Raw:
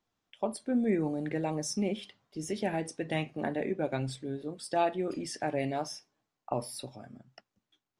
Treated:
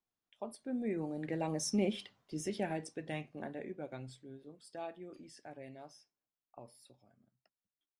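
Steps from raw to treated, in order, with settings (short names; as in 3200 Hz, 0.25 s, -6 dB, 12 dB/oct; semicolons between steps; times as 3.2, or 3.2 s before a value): Doppler pass-by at 1.98, 8 m/s, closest 3.7 m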